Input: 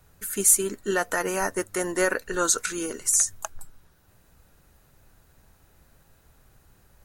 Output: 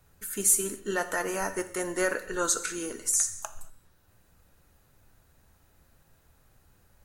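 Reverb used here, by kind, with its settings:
reverb whose tail is shaped and stops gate 260 ms falling, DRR 8.5 dB
level −4.5 dB

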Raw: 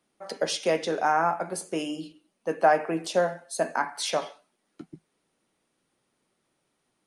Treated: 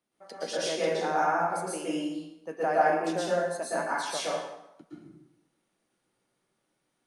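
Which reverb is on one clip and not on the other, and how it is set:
dense smooth reverb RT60 0.84 s, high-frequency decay 0.75×, pre-delay 105 ms, DRR −7.5 dB
level −10 dB

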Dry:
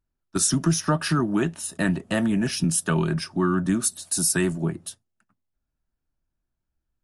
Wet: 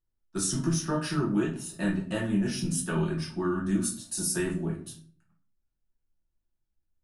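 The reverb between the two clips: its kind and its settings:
rectangular room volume 37 cubic metres, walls mixed, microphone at 0.86 metres
level −11.5 dB

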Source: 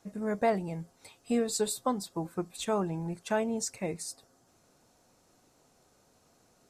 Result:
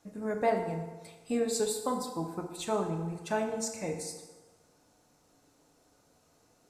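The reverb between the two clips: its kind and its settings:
feedback delay network reverb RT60 1.3 s, low-frequency decay 0.85×, high-frequency decay 0.7×, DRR 3 dB
level −2.5 dB

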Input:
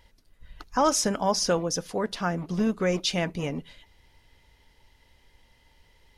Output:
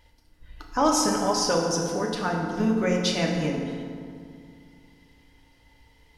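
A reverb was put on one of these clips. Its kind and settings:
feedback delay network reverb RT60 2.2 s, low-frequency decay 1.35×, high-frequency decay 0.55×, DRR −0.5 dB
level −1.5 dB

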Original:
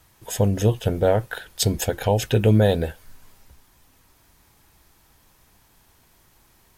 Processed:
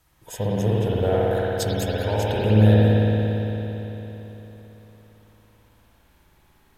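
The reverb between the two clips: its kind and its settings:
spring reverb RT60 3.8 s, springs 56 ms, chirp 45 ms, DRR −7.5 dB
level −8 dB

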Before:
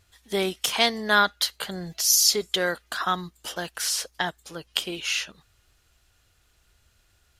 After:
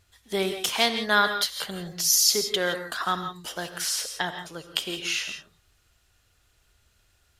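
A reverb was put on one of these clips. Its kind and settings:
reverb whose tail is shaped and stops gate 190 ms rising, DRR 7.5 dB
level −1.5 dB

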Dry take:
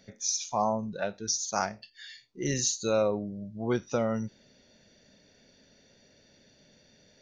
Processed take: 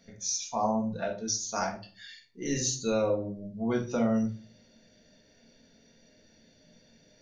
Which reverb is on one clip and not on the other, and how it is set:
rectangular room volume 270 cubic metres, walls furnished, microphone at 1.7 metres
level −4 dB

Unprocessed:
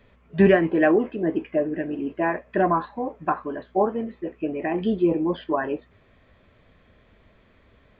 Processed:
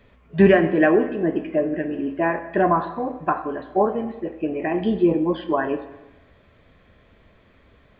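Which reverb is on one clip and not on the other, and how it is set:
dense smooth reverb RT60 1.1 s, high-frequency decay 0.8×, DRR 9.5 dB
level +2 dB

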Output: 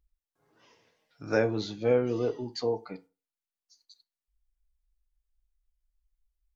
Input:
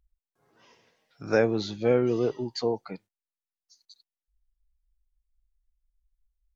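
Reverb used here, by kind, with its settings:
feedback delay network reverb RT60 0.31 s, low-frequency decay 0.9×, high-frequency decay 0.65×, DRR 9.5 dB
level −3 dB

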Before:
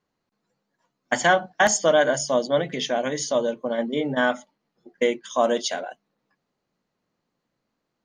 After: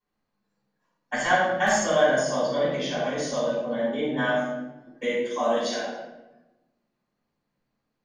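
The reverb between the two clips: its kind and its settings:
rectangular room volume 440 cubic metres, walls mixed, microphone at 8.7 metres
level −18.5 dB

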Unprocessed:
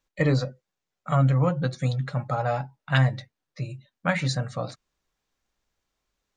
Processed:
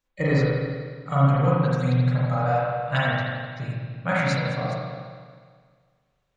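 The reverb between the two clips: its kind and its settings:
spring reverb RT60 1.8 s, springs 36/40 ms, chirp 50 ms, DRR −7 dB
level −4 dB

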